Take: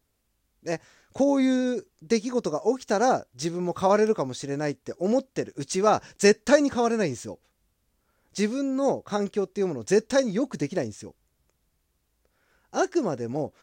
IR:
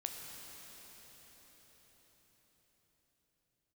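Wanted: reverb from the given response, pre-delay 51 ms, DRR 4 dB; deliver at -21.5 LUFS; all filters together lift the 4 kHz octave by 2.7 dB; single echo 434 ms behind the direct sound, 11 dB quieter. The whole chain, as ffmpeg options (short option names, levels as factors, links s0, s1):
-filter_complex "[0:a]equalizer=f=4000:t=o:g=3.5,aecho=1:1:434:0.282,asplit=2[s0][s1];[1:a]atrim=start_sample=2205,adelay=51[s2];[s1][s2]afir=irnorm=-1:irlink=0,volume=0.668[s3];[s0][s3]amix=inputs=2:normalize=0,volume=1.33"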